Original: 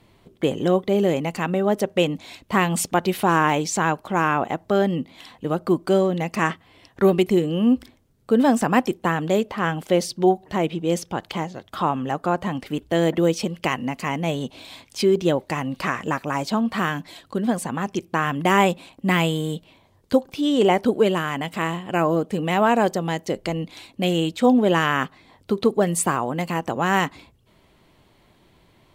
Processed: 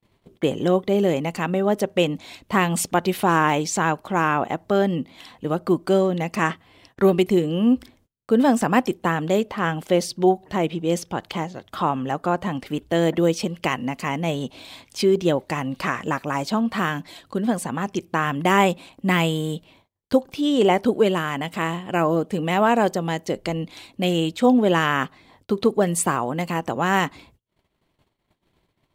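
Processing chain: gate -54 dBFS, range -30 dB

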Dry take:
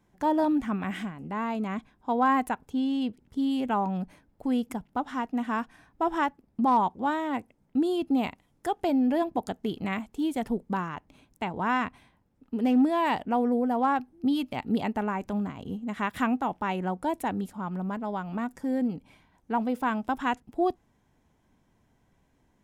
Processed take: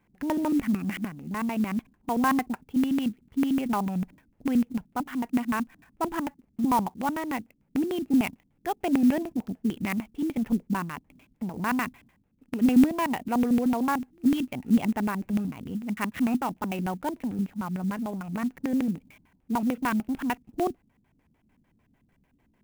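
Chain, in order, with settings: LFO low-pass square 6.7 Hz 240–2500 Hz; clock jitter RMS 0.025 ms; gain -1.5 dB

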